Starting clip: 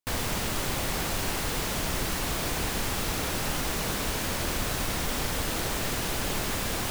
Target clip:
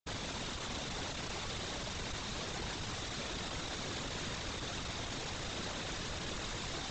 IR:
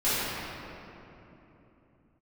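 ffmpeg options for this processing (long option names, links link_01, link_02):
-af "aresample=16000,asoftclip=type=hard:threshold=-34.5dB,aresample=44100,equalizer=frequency=3700:width_type=o:width=0.22:gain=6.5,afftfilt=real='hypot(re,im)*cos(2*PI*random(0))':imag='hypot(re,im)*sin(2*PI*random(1))':win_size=512:overlap=0.75,volume=1.5dB"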